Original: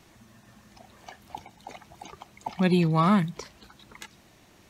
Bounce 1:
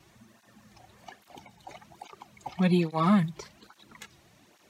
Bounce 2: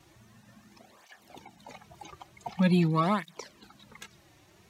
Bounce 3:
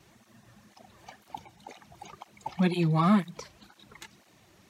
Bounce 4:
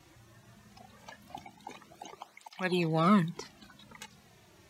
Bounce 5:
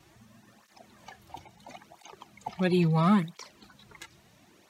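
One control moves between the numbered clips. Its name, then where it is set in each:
through-zero flanger with one copy inverted, nulls at: 1.2, 0.46, 2, 0.2, 0.74 Hertz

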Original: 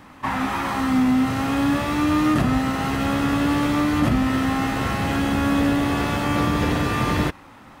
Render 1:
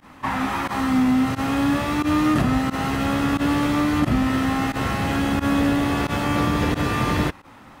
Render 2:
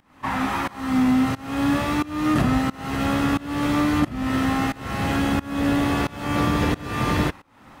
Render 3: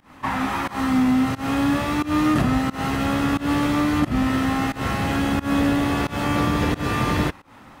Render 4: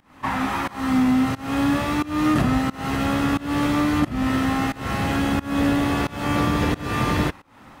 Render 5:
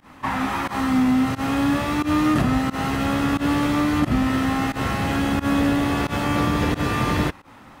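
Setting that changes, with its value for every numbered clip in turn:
fake sidechain pumping, release: 64, 444, 169, 299, 99 milliseconds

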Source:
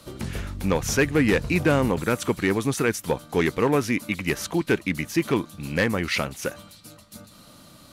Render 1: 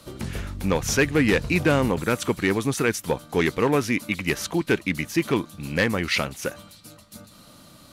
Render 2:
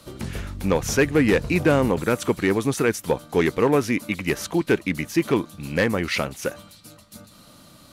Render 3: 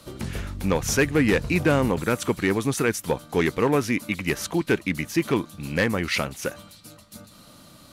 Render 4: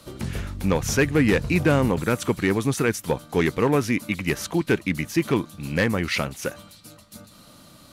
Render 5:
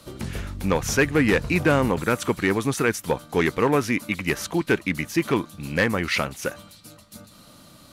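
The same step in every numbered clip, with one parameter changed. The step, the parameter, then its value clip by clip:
dynamic equaliser, frequency: 3,700, 470, 10,000, 120, 1,300 Hertz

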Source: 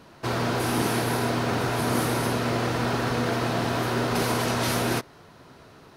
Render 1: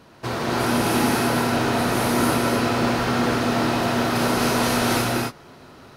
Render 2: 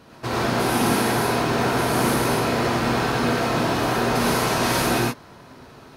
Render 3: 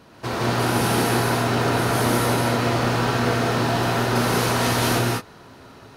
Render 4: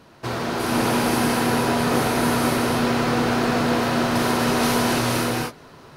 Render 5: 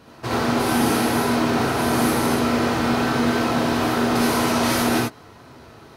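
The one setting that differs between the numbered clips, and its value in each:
reverb whose tail is shaped and stops, gate: 320, 140, 220, 520, 100 milliseconds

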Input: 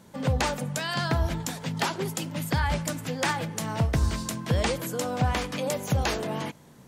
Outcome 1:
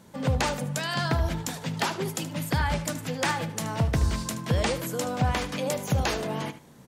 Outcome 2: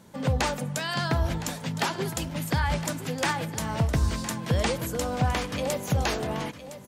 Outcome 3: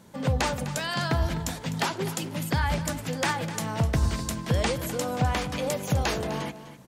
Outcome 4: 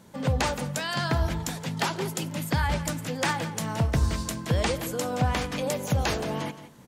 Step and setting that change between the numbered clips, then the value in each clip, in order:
repeating echo, delay time: 76, 1,012, 253, 170 milliseconds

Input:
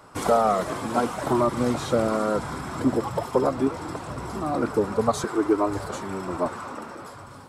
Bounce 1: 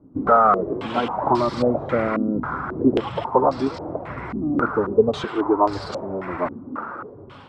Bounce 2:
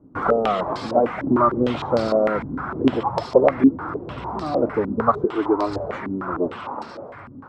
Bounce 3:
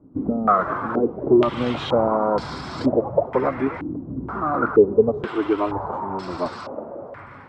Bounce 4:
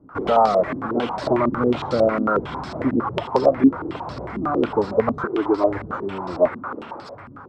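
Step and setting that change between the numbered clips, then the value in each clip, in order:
low-pass on a step sequencer, speed: 3.7, 6.6, 2.1, 11 Hertz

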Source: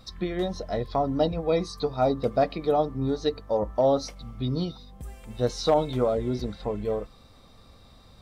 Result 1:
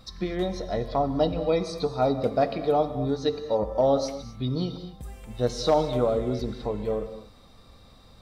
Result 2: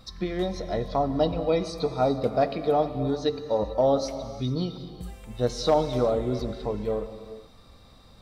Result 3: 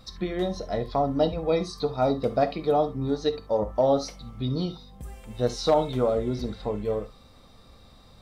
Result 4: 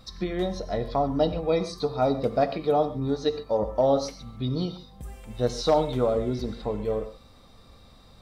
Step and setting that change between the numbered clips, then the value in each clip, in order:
reverb whose tail is shaped and stops, gate: 280, 470, 90, 160 milliseconds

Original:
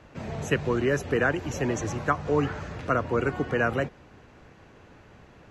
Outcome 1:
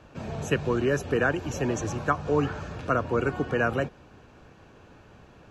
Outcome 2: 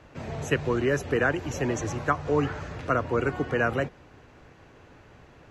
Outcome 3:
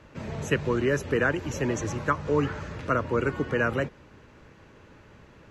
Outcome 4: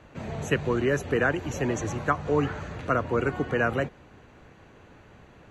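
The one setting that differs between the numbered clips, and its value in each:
notch filter, centre frequency: 2,000, 200, 730, 5,200 Hertz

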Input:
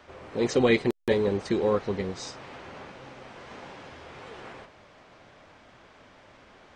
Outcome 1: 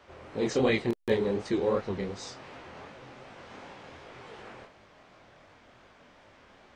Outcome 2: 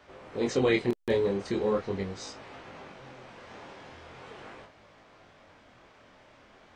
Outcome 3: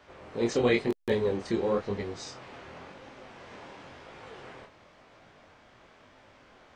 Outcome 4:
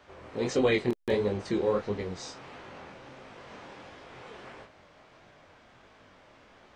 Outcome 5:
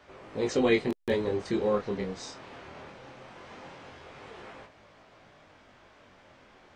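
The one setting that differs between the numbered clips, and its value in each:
chorus effect, speed: 2.7, 0.41, 0.96, 1.5, 0.2 Hertz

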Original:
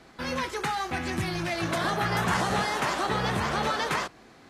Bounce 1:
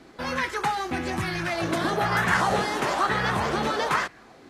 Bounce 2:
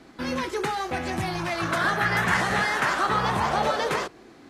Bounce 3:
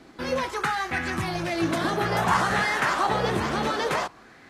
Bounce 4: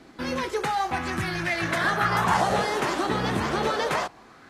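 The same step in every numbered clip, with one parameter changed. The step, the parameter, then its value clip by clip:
auto-filter bell, speed: 1.1, 0.21, 0.56, 0.31 Hertz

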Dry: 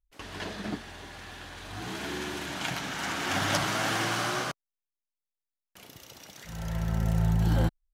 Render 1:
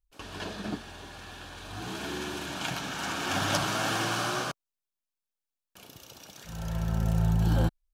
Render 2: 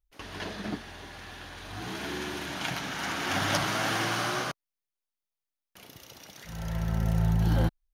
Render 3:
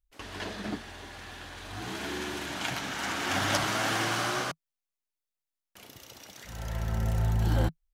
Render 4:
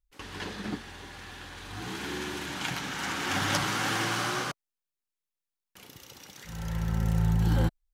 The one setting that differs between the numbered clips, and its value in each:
notch filter, centre frequency: 2,000, 7,700, 160, 650 Hertz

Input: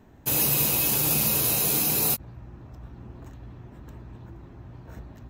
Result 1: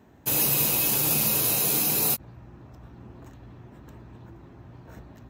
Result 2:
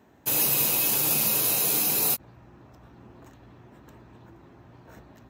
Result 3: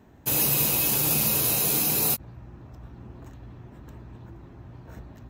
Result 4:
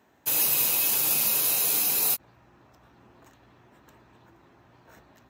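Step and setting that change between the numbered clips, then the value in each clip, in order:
high-pass filter, corner frequency: 110, 300, 41, 890 Hertz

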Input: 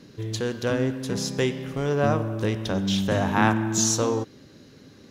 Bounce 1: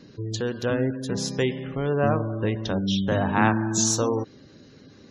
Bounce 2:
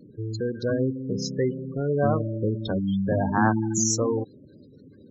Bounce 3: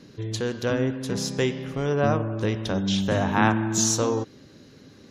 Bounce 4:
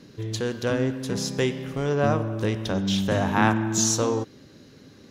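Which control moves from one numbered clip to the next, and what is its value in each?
gate on every frequency bin, under each frame's peak: −30, −15, −45, −60 decibels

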